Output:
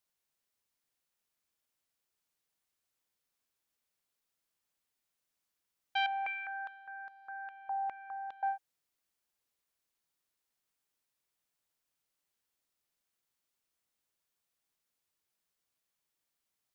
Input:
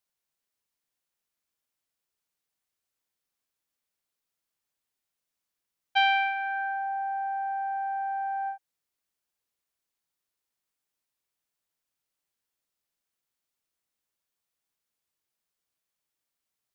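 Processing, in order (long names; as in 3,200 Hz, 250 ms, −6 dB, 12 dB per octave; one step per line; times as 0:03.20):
brickwall limiter −22 dBFS, peak gain reduction 9.5 dB
0:06.06–0:08.43: band-pass on a step sequencer 4.9 Hz 900–4,400 Hz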